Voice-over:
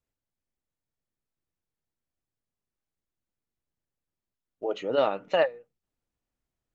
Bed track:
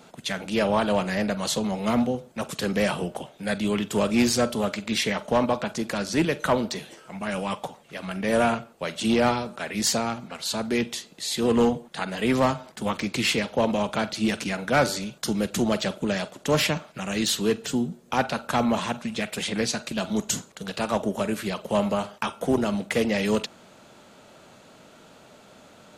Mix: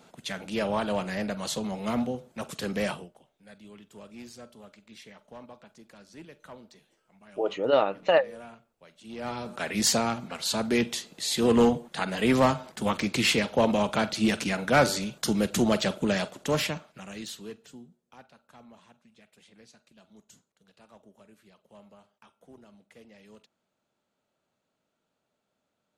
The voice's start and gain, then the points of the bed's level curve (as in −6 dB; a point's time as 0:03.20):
2.75 s, +2.0 dB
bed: 0:02.91 −5.5 dB
0:03.14 −24 dB
0:09.04 −24 dB
0:09.54 0 dB
0:16.24 0 dB
0:18.29 −29.5 dB